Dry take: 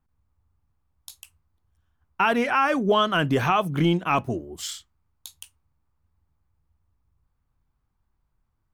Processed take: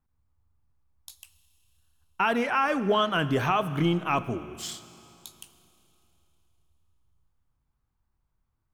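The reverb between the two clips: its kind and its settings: Schroeder reverb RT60 3.1 s, combs from 27 ms, DRR 14 dB; trim -3.5 dB

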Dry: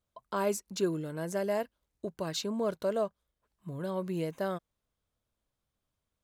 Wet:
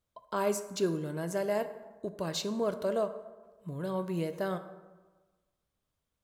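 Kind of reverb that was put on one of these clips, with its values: plate-style reverb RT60 1.3 s, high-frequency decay 0.5×, DRR 9 dB

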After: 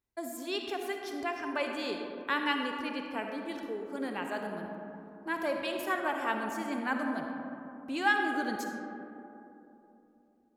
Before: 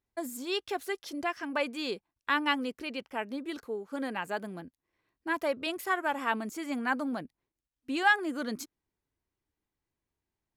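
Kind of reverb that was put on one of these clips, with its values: algorithmic reverb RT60 3.2 s, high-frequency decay 0.3×, pre-delay 20 ms, DRR 2.5 dB; trim -3 dB

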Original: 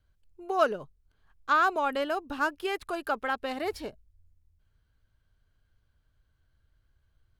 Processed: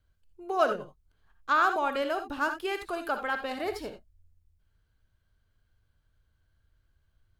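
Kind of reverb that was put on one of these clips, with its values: gated-style reverb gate 100 ms rising, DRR 7 dB; trim -1 dB

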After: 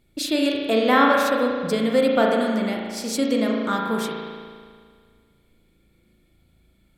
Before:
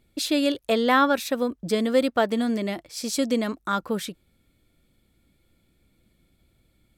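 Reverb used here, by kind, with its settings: spring tank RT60 1.9 s, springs 36 ms, chirp 45 ms, DRR -1 dB

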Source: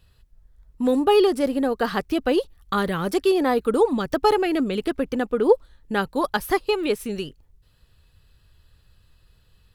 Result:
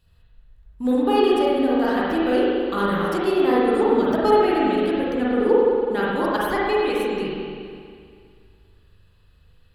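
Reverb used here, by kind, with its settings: spring tank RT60 2.2 s, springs 40/52 ms, chirp 55 ms, DRR -7 dB; trim -6 dB

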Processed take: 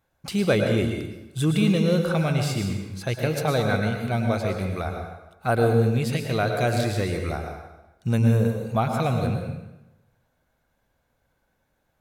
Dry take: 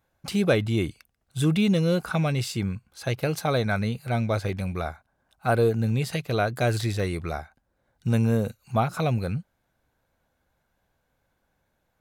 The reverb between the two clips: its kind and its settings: plate-style reverb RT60 1 s, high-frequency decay 0.8×, pre-delay 95 ms, DRR 3.5 dB

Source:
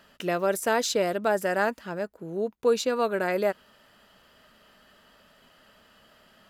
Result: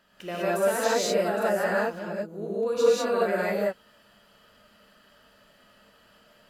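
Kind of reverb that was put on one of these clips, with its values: gated-style reverb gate 220 ms rising, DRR -7.5 dB; trim -8.5 dB

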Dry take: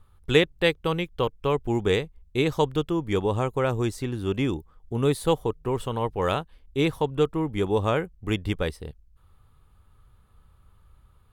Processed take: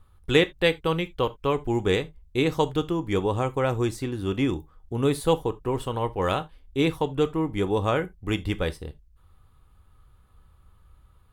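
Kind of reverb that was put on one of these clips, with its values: gated-style reverb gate 100 ms falling, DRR 10.5 dB

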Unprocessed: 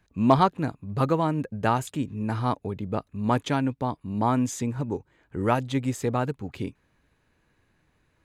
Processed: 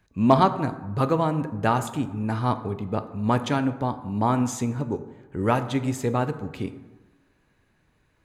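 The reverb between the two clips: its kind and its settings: plate-style reverb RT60 1.2 s, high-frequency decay 0.45×, DRR 9.5 dB; trim +1 dB

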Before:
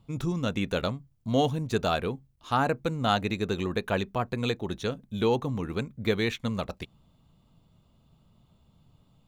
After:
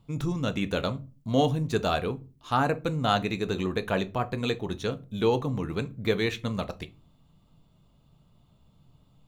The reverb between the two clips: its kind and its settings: simulated room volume 130 m³, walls furnished, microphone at 0.4 m

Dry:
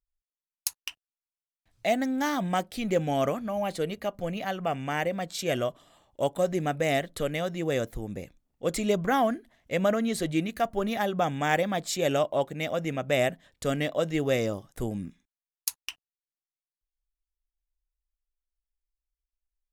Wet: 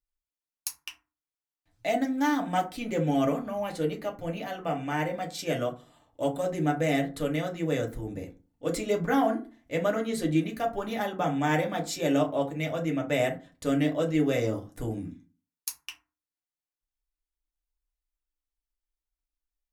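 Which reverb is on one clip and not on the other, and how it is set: FDN reverb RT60 0.33 s, low-frequency decay 1.35×, high-frequency decay 0.5×, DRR 0 dB; trim -4.5 dB

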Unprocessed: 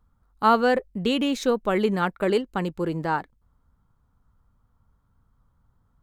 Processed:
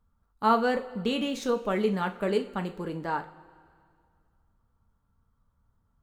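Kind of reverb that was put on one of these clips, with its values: two-slope reverb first 0.33 s, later 2.2 s, from -19 dB, DRR 5 dB; trim -6 dB

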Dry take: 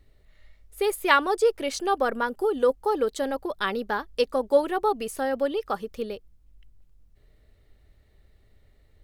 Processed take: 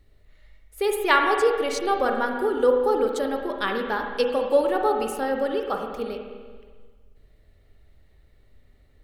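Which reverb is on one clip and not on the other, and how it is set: spring tank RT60 1.6 s, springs 40/44/52 ms, chirp 65 ms, DRR 2.5 dB

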